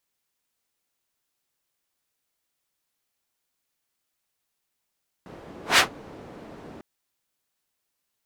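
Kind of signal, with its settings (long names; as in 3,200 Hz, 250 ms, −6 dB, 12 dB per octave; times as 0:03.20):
pass-by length 1.55 s, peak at 0:00.52, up 0.15 s, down 0.13 s, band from 370 Hz, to 2,500 Hz, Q 0.77, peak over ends 27.5 dB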